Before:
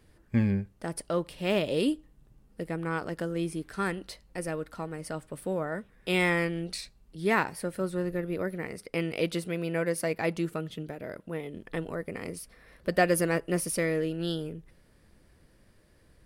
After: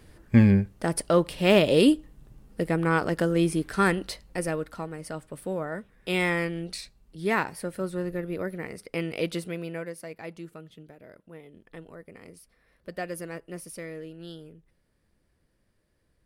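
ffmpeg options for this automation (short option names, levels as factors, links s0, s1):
-af "volume=2.51,afade=t=out:st=3.93:d=1.01:silence=0.398107,afade=t=out:st=9.41:d=0.55:silence=0.298538"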